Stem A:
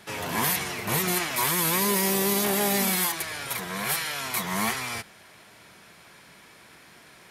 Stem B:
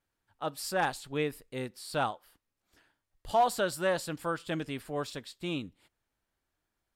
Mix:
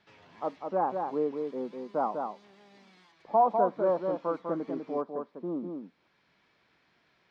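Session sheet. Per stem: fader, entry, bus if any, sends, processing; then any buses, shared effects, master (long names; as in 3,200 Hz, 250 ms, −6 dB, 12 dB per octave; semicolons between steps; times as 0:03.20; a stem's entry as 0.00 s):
−16.5 dB, 0.00 s, no send, no echo send, downward compressor 1.5 to 1, threshold −47 dBFS, peak gain reduction 9.5 dB; automatic ducking −6 dB, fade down 0.75 s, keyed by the second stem
+3.0 dB, 0.00 s, no send, echo send −5 dB, elliptic band-pass filter 200–1,100 Hz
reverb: not used
echo: single-tap delay 199 ms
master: low-pass filter 4,900 Hz 24 dB per octave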